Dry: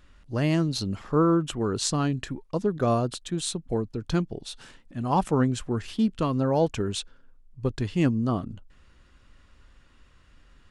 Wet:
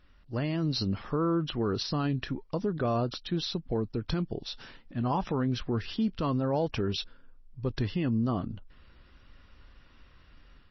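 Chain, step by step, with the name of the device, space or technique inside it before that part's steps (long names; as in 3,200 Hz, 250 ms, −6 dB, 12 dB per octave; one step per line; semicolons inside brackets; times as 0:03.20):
low-bitrate web radio (automatic gain control gain up to 6 dB; brickwall limiter −15 dBFS, peak gain reduction 9.5 dB; level −5 dB; MP3 24 kbit/s 22,050 Hz)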